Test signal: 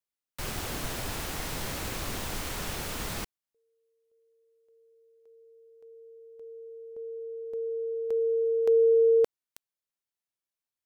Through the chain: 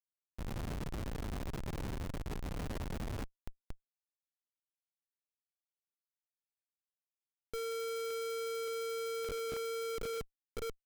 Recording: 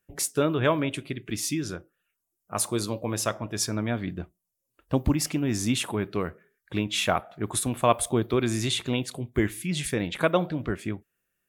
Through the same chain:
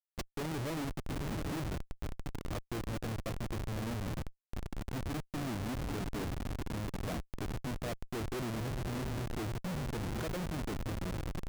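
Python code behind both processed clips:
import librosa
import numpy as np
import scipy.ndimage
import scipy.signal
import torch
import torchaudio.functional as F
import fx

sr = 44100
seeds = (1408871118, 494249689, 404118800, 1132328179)

y = fx.env_lowpass_down(x, sr, base_hz=520.0, full_db=-22.5)
y = fx.echo_diffused(y, sr, ms=792, feedback_pct=53, wet_db=-9)
y = fx.schmitt(y, sr, flips_db=-31.5)
y = F.gain(torch.from_numpy(y), -7.0).numpy()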